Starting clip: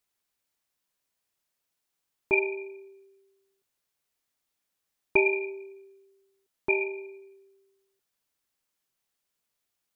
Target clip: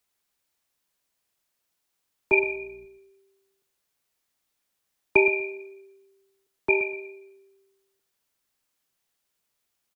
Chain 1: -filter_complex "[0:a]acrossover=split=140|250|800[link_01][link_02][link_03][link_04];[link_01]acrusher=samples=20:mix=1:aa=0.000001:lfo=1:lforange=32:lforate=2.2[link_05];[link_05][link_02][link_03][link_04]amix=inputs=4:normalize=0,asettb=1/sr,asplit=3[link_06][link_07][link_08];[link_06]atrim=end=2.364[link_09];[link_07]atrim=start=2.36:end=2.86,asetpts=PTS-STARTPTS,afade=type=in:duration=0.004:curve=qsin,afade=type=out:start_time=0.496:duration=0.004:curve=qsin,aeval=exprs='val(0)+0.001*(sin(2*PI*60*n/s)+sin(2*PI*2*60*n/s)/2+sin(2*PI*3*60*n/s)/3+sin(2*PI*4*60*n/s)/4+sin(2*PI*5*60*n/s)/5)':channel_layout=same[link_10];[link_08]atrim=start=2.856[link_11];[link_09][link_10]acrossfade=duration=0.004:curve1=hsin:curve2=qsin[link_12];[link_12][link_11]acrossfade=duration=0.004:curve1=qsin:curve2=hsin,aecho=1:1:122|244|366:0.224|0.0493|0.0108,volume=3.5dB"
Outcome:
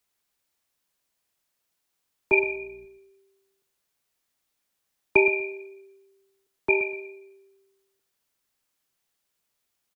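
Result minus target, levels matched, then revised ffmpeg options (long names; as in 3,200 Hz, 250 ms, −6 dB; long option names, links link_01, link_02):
sample-and-hold swept by an LFO: distortion −6 dB
-filter_complex "[0:a]acrossover=split=140|250|800[link_01][link_02][link_03][link_04];[link_01]acrusher=samples=40:mix=1:aa=0.000001:lfo=1:lforange=64:lforate=2.2[link_05];[link_05][link_02][link_03][link_04]amix=inputs=4:normalize=0,asettb=1/sr,asplit=3[link_06][link_07][link_08];[link_06]atrim=end=2.364[link_09];[link_07]atrim=start=2.36:end=2.86,asetpts=PTS-STARTPTS,afade=type=in:duration=0.004:curve=qsin,afade=type=out:start_time=0.496:duration=0.004:curve=qsin,aeval=exprs='val(0)+0.001*(sin(2*PI*60*n/s)+sin(2*PI*2*60*n/s)/2+sin(2*PI*3*60*n/s)/3+sin(2*PI*4*60*n/s)/4+sin(2*PI*5*60*n/s)/5)':channel_layout=same[link_10];[link_08]atrim=start=2.856[link_11];[link_09][link_10]acrossfade=duration=0.004:curve1=hsin:curve2=qsin[link_12];[link_12][link_11]acrossfade=duration=0.004:curve1=qsin:curve2=hsin,aecho=1:1:122|244|366:0.224|0.0493|0.0108,volume=3.5dB"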